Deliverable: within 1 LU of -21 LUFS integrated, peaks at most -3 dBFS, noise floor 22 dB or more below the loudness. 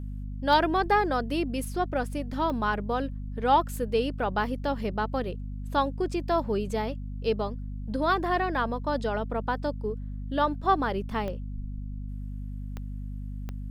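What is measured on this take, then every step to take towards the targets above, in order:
clicks 5; hum 50 Hz; harmonics up to 250 Hz; hum level -33 dBFS; loudness -29.0 LUFS; peak -8.0 dBFS; loudness target -21.0 LUFS
-> de-click; notches 50/100/150/200/250 Hz; gain +8 dB; limiter -3 dBFS

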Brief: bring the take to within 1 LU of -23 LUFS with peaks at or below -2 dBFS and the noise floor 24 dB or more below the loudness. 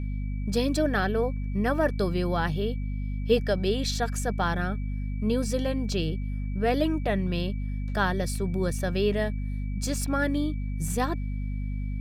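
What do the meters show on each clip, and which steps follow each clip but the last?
hum 50 Hz; harmonics up to 250 Hz; hum level -28 dBFS; steady tone 2300 Hz; tone level -53 dBFS; loudness -28.0 LUFS; peak -10.0 dBFS; loudness target -23.0 LUFS
-> de-hum 50 Hz, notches 5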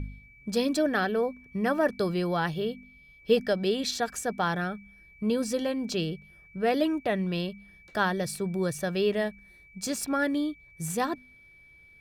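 hum none; steady tone 2300 Hz; tone level -53 dBFS
-> notch 2300 Hz, Q 30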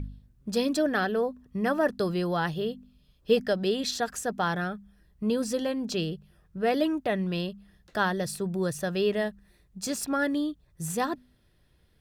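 steady tone none; loudness -29.0 LUFS; peak -10.5 dBFS; loudness target -23.0 LUFS
-> gain +6 dB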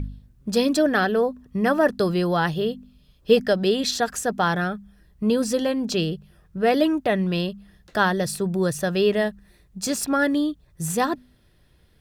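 loudness -23.0 LUFS; peak -4.5 dBFS; noise floor -59 dBFS

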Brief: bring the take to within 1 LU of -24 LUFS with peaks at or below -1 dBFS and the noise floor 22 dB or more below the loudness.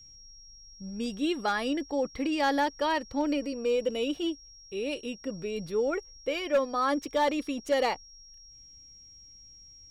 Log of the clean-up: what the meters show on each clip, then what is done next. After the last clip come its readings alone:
clipped 0.3%; flat tops at -19.0 dBFS; steady tone 5600 Hz; tone level -50 dBFS; loudness -30.0 LUFS; peak -19.0 dBFS; loudness target -24.0 LUFS
-> clip repair -19 dBFS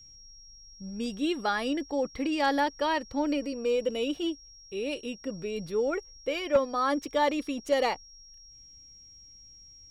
clipped 0.0%; steady tone 5600 Hz; tone level -50 dBFS
-> notch 5600 Hz, Q 30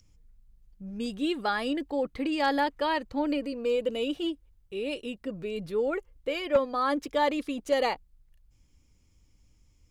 steady tone none; loudness -29.5 LUFS; peak -10.5 dBFS; loudness target -24.0 LUFS
-> gain +5.5 dB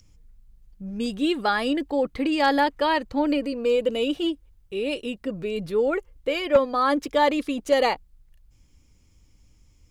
loudness -24.0 LUFS; peak -5.0 dBFS; noise floor -59 dBFS

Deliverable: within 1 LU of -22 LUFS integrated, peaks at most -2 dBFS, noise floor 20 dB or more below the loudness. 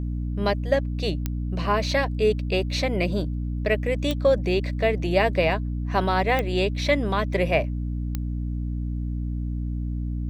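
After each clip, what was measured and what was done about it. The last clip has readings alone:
clicks 4; hum 60 Hz; harmonics up to 300 Hz; hum level -25 dBFS; loudness -25.0 LUFS; peak -8.0 dBFS; loudness target -22.0 LUFS
-> de-click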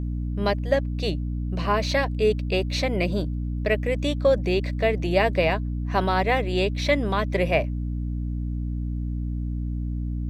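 clicks 0; hum 60 Hz; harmonics up to 300 Hz; hum level -25 dBFS
-> notches 60/120/180/240/300 Hz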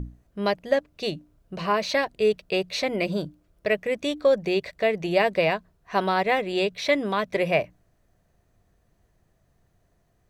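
hum none; loudness -25.0 LUFS; peak -8.5 dBFS; loudness target -22.0 LUFS
-> gain +3 dB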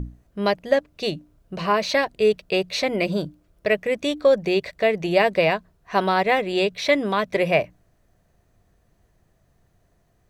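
loudness -22.0 LUFS; peak -5.5 dBFS; noise floor -64 dBFS

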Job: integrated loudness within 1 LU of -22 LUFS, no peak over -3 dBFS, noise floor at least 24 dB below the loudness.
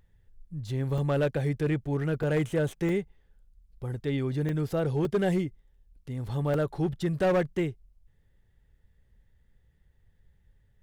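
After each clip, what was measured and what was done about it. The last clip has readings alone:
clipped 1.1%; flat tops at -20.0 dBFS; dropouts 6; longest dropout 2.4 ms; loudness -29.0 LUFS; peak -20.0 dBFS; loudness target -22.0 LUFS
-> clip repair -20 dBFS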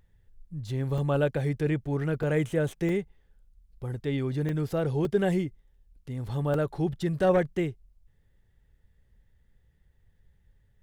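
clipped 0.0%; dropouts 6; longest dropout 2.4 ms
-> interpolate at 0.98/2.23/2.89/4.49/5.05/6.54, 2.4 ms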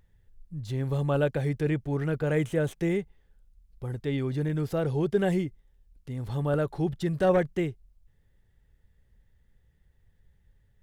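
dropouts 0; loudness -28.5 LUFS; peak -11.5 dBFS; loudness target -22.0 LUFS
-> gain +6.5 dB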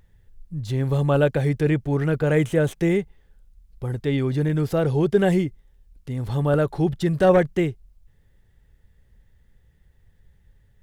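loudness -22.0 LUFS; peak -5.0 dBFS; noise floor -59 dBFS

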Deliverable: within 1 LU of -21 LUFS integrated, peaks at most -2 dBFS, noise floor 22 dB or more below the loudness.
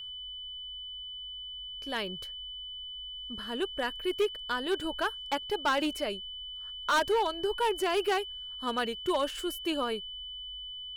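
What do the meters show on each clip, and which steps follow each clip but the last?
clipped 1.1%; flat tops at -22.0 dBFS; steady tone 3000 Hz; tone level -39 dBFS; loudness -32.5 LUFS; peak -22.0 dBFS; loudness target -21.0 LUFS
-> clip repair -22 dBFS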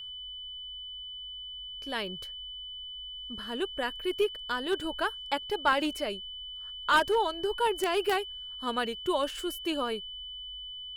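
clipped 0.0%; steady tone 3000 Hz; tone level -39 dBFS
-> notch 3000 Hz, Q 30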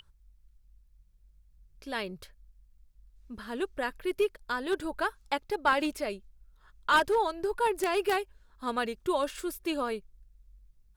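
steady tone none; loudness -31.0 LUFS; peak -12.5 dBFS; loudness target -21.0 LUFS
-> gain +10 dB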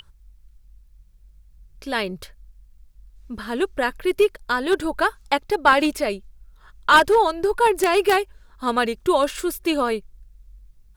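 loudness -21.0 LUFS; peak -2.5 dBFS; noise floor -53 dBFS

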